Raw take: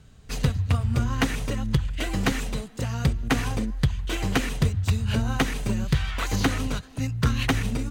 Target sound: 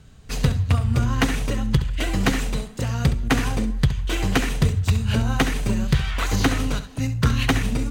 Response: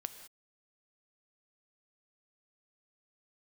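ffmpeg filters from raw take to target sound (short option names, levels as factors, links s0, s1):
-filter_complex "[0:a]asplit=2[s0][s1];[1:a]atrim=start_sample=2205,afade=t=out:st=0.16:d=0.01,atrim=end_sample=7497,adelay=68[s2];[s1][s2]afir=irnorm=-1:irlink=0,volume=0.335[s3];[s0][s3]amix=inputs=2:normalize=0,volume=1.41"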